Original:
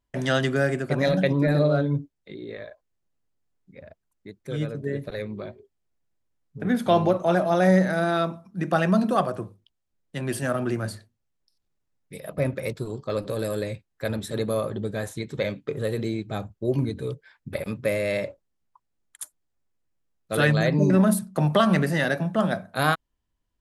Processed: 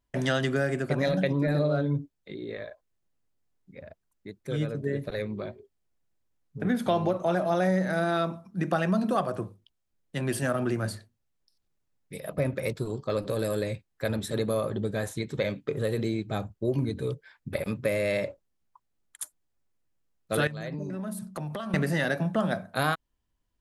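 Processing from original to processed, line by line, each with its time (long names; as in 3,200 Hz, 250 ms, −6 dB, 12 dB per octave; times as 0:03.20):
0:20.47–0:21.74: downward compressor 10 to 1, threshold −31 dBFS
whole clip: downward compressor 3 to 1, threshold −23 dBFS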